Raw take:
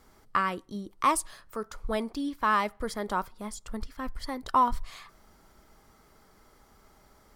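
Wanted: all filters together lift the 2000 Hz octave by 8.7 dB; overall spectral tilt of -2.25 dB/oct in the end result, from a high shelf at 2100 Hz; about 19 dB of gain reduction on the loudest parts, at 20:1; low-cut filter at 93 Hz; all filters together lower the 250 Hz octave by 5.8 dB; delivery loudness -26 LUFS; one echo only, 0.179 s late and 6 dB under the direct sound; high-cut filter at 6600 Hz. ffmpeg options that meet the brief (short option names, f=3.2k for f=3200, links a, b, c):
-af "highpass=93,lowpass=6.6k,equalizer=f=250:t=o:g=-7,equalizer=f=2k:t=o:g=7.5,highshelf=f=2.1k:g=7,acompressor=threshold=-34dB:ratio=20,aecho=1:1:179:0.501,volume=13.5dB"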